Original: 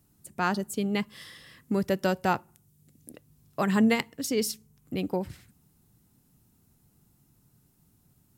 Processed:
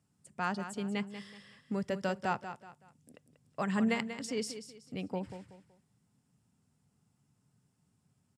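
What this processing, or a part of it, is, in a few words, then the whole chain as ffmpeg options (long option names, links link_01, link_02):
car door speaker: -af "highpass=100,equalizer=frequency=330:width_type=q:width=4:gain=-9,equalizer=frequency=4000:width_type=q:width=4:gain=-6,equalizer=frequency=6300:width_type=q:width=4:gain=-6,lowpass=frequency=7600:width=0.5412,lowpass=frequency=7600:width=1.3066,equalizer=frequency=13000:width=0.46:gain=5.5,aecho=1:1:188|376|564:0.299|0.0955|0.0306,volume=-6.5dB"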